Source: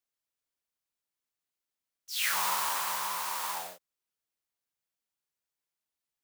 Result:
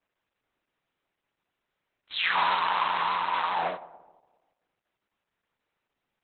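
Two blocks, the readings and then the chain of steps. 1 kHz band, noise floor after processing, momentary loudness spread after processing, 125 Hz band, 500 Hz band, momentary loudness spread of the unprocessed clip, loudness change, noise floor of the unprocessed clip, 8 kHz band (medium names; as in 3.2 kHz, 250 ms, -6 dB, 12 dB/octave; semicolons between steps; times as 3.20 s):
+8.5 dB, -85 dBFS, 9 LU, no reading, +10.0 dB, 10 LU, +3.5 dB, under -85 dBFS, under -40 dB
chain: local Wiener filter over 9 samples; peaking EQ 67 Hz -14 dB 0.31 oct; tape echo 126 ms, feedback 65%, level -16.5 dB, low-pass 1 kHz; in parallel at -2 dB: compressor with a negative ratio -43 dBFS, ratio -1; on the sum: trim +8 dB; Opus 8 kbps 48 kHz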